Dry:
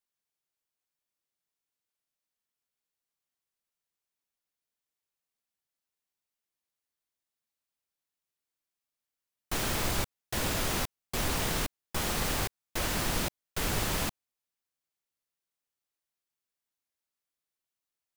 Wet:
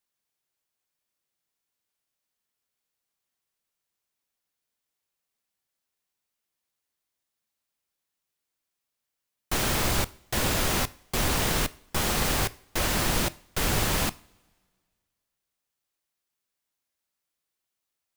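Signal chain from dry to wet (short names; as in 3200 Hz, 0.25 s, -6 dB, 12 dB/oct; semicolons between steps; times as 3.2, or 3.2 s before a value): two-slope reverb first 0.44 s, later 1.9 s, from -20 dB, DRR 16 dB; gain +5 dB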